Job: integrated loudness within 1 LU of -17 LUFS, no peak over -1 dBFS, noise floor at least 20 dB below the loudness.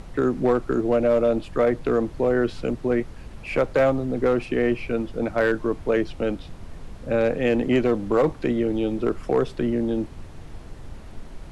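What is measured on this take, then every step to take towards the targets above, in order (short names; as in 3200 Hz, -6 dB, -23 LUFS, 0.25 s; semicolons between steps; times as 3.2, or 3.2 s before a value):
clipped 0.5%; flat tops at -12.5 dBFS; noise floor -41 dBFS; noise floor target -44 dBFS; loudness -23.5 LUFS; peak -12.5 dBFS; loudness target -17.0 LUFS
-> clip repair -12.5 dBFS; noise print and reduce 6 dB; gain +6.5 dB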